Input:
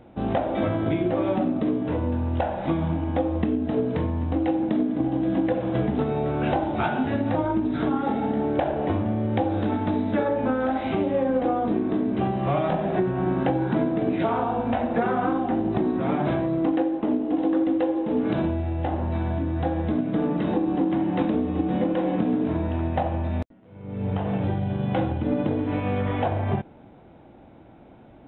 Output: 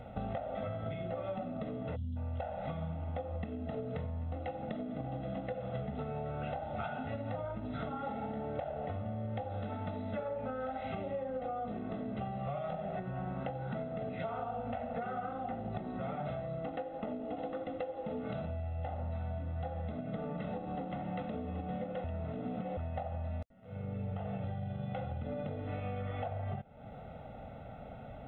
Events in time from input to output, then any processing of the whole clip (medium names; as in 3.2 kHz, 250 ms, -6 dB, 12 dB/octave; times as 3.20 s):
1.96–2.16 s: time-frequency box 270–2800 Hz -29 dB
22.04–22.77 s: reverse
whole clip: comb 1.5 ms, depth 91%; compression, threshold -37 dBFS